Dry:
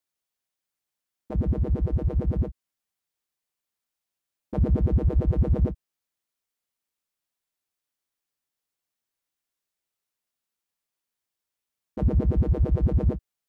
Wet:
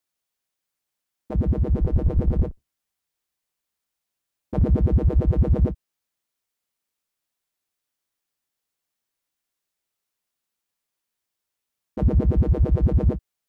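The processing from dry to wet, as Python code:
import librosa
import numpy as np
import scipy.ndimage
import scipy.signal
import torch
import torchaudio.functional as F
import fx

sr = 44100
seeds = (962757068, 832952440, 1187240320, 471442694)

y = fx.octave_divider(x, sr, octaves=2, level_db=-5.0, at=(1.74, 4.62))
y = F.gain(torch.from_numpy(y), 3.0).numpy()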